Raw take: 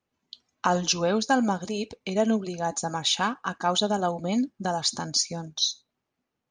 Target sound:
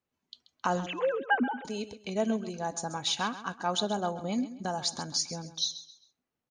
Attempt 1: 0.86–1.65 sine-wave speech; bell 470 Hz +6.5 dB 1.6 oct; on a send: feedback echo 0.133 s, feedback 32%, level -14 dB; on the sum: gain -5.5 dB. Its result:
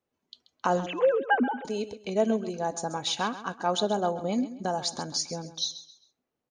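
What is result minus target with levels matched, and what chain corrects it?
500 Hz band +3.0 dB
0.86–1.65 sine-wave speech; on a send: feedback echo 0.133 s, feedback 32%, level -14 dB; on the sum: gain -5.5 dB

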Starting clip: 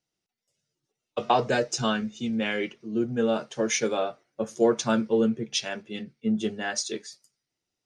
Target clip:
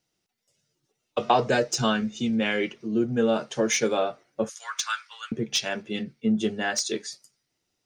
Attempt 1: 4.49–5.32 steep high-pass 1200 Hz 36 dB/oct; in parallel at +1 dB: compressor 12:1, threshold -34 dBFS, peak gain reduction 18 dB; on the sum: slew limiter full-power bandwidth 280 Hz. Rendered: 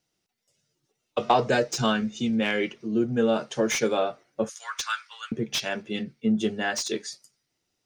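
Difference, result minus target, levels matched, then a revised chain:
slew limiter: distortion +11 dB
4.49–5.32 steep high-pass 1200 Hz 36 dB/oct; in parallel at +1 dB: compressor 12:1, threshold -34 dBFS, peak gain reduction 18 dB; on the sum: slew limiter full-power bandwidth 670 Hz

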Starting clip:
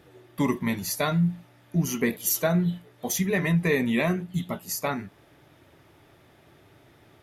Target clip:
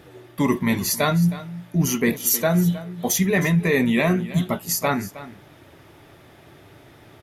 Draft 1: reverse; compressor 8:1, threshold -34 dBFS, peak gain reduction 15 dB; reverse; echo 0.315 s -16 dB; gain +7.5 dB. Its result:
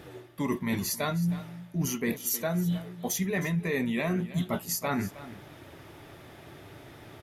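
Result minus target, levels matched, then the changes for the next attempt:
compressor: peak gain reduction +10 dB
change: compressor 8:1, threshold -22.5 dBFS, peak gain reduction 5 dB

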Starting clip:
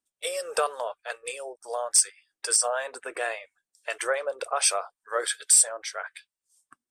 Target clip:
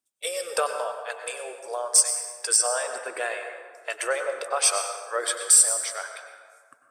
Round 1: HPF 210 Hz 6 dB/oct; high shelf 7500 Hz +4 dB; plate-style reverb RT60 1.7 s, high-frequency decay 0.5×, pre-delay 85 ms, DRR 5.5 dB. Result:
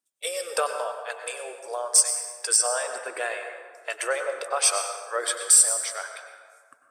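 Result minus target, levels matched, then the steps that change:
125 Hz band -3.5 dB
change: HPF 94 Hz 6 dB/oct

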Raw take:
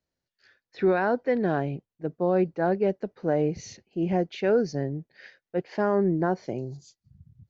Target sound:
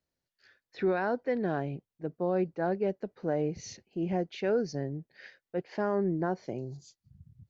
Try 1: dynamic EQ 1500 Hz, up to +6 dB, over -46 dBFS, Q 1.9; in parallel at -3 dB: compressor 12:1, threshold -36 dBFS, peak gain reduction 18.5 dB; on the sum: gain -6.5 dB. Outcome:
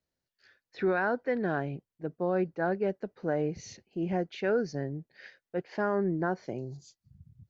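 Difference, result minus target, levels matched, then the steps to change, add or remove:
2000 Hz band +4.5 dB
change: dynamic EQ 5300 Hz, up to +6 dB, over -46 dBFS, Q 1.9

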